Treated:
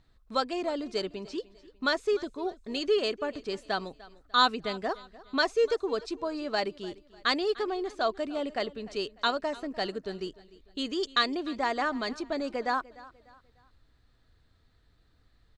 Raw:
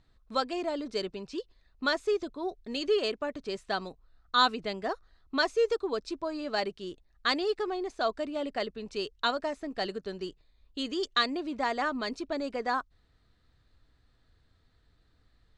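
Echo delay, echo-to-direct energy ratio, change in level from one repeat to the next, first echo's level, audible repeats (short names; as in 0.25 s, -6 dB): 0.298 s, -19.5 dB, -8.5 dB, -20.0 dB, 2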